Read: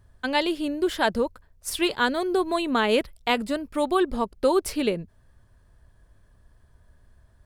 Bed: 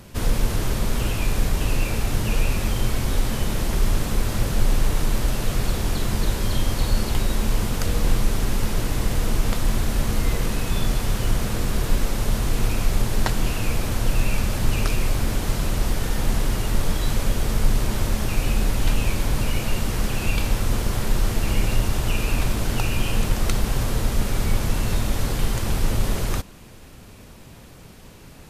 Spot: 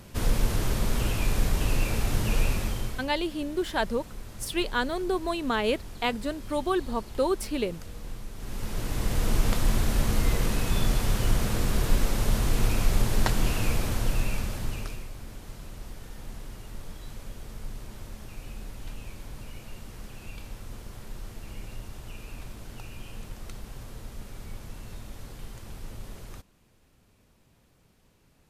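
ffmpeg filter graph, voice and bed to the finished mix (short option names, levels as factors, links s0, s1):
-filter_complex "[0:a]adelay=2750,volume=0.596[s0];[1:a]volume=4.47,afade=t=out:st=2.45:d=0.64:silence=0.16788,afade=t=in:st=8.35:d=1.02:silence=0.149624,afade=t=out:st=13.63:d=1.45:silence=0.149624[s1];[s0][s1]amix=inputs=2:normalize=0"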